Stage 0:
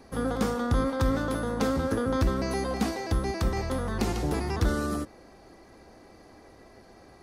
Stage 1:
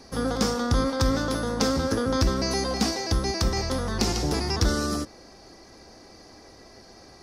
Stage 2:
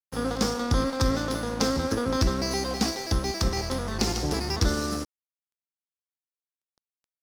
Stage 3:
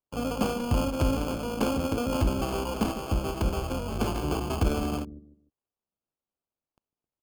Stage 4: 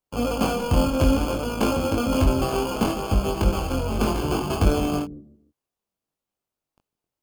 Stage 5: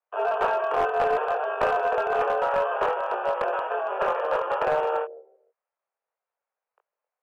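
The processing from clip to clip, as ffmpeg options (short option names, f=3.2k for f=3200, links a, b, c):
-af "equalizer=f=5.3k:w=1.6:g=13.5,volume=2dB"
-af "aeval=exprs='sgn(val(0))*max(abs(val(0))-0.0133,0)':c=same"
-filter_complex "[0:a]acrossover=split=460[a][b];[a]aecho=1:1:150|300|450:0.282|0.0846|0.0254[c];[b]acrusher=samples=23:mix=1:aa=0.000001[d];[c][d]amix=inputs=2:normalize=0,volume=-1.5dB"
-af "flanger=delay=20:depth=3.2:speed=0.62,volume=8.5dB"
-af "highpass=f=320:t=q:w=0.5412,highpass=f=320:t=q:w=1.307,lowpass=f=2.2k:t=q:w=0.5176,lowpass=f=2.2k:t=q:w=0.7071,lowpass=f=2.2k:t=q:w=1.932,afreqshift=170,aeval=exprs='clip(val(0),-1,0.0891)':c=same,volume=2.5dB"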